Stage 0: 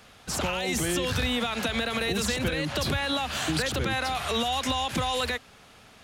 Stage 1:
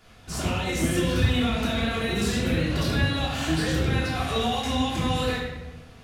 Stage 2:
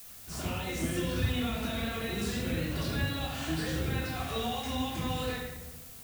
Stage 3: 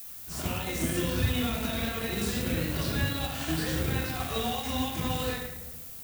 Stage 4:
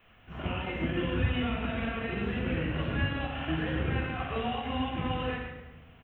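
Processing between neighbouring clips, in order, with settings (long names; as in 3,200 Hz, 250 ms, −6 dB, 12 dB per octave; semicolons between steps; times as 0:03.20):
low-shelf EQ 280 Hz +6.5 dB; rectangular room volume 540 cubic metres, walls mixed, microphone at 3.2 metres; level −8.5 dB
background noise blue −41 dBFS; level −8 dB
high-shelf EQ 11,000 Hz +7.5 dB; in parallel at −10 dB: bit reduction 5 bits
elliptic low-pass filter 3,000 Hz, stop band 40 dB; single-tap delay 138 ms −9.5 dB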